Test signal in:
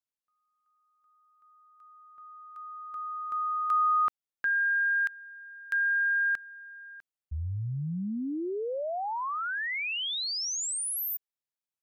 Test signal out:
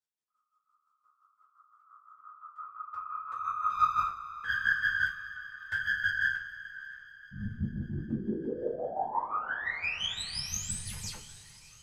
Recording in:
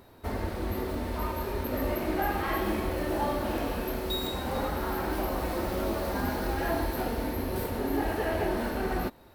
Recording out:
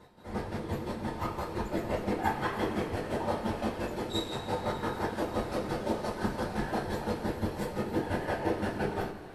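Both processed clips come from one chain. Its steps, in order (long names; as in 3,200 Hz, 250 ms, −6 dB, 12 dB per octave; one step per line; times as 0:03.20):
stylus tracing distortion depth 0.035 ms
low-pass filter 10,000 Hz 24 dB per octave
mains-hum notches 50/100/150/200 Hz
in parallel at −6 dB: hard clipping −28.5 dBFS
on the sum: square-wave tremolo 5.8 Hz, depth 65%, duty 30%
random phases in short frames
on a send: delay with a high-pass on its return 595 ms, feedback 57%, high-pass 1,600 Hz, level −20 dB
on the sum: coupled-rooms reverb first 0.24 s, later 3.8 s, from −22 dB, DRR −6.5 dB
level −9 dB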